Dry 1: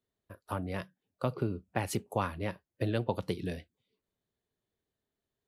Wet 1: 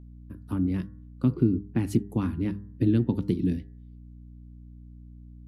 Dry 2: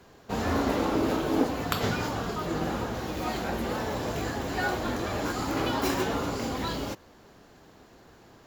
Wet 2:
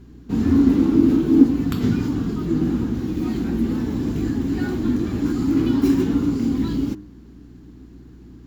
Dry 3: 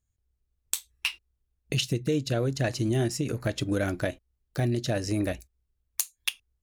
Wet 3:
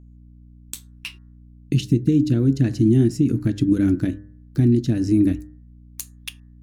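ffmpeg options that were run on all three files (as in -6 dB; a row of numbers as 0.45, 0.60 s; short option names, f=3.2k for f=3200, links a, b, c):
-af "lowshelf=f=410:t=q:w=3:g=12.5,aeval=exprs='val(0)+0.01*(sin(2*PI*60*n/s)+sin(2*PI*2*60*n/s)/2+sin(2*PI*3*60*n/s)/3+sin(2*PI*4*60*n/s)/4+sin(2*PI*5*60*n/s)/5)':c=same,bandreject=f=100.9:t=h:w=4,bandreject=f=201.8:t=h:w=4,bandreject=f=302.7:t=h:w=4,bandreject=f=403.6:t=h:w=4,bandreject=f=504.5:t=h:w=4,bandreject=f=605.4:t=h:w=4,bandreject=f=706.3:t=h:w=4,bandreject=f=807.2:t=h:w=4,bandreject=f=908.1:t=h:w=4,bandreject=f=1.009k:t=h:w=4,bandreject=f=1.1099k:t=h:w=4,bandreject=f=1.2108k:t=h:w=4,bandreject=f=1.3117k:t=h:w=4,bandreject=f=1.4126k:t=h:w=4,bandreject=f=1.5135k:t=h:w=4,bandreject=f=1.6144k:t=h:w=4,bandreject=f=1.7153k:t=h:w=4,bandreject=f=1.8162k:t=h:w=4,bandreject=f=1.9171k:t=h:w=4,volume=-4.5dB"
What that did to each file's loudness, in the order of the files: +8.0, +9.5, +9.5 LU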